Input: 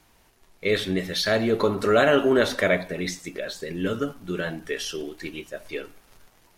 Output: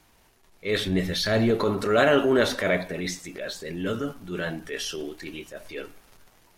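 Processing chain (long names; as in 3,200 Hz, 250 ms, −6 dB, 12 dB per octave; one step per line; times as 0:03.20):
0:00.85–0:01.51: low-shelf EQ 150 Hz +11 dB
transient designer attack −8 dB, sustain +1 dB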